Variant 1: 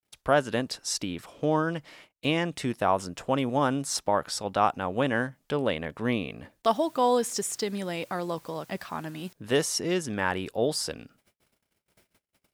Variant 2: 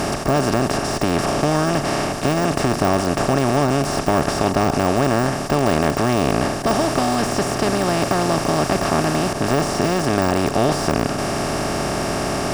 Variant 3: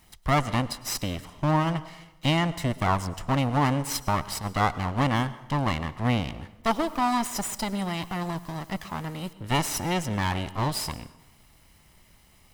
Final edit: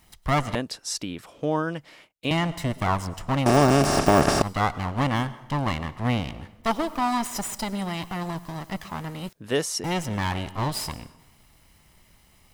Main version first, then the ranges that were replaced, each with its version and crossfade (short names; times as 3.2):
3
0.55–2.31 from 1
3.46–4.42 from 2
9.29–9.84 from 1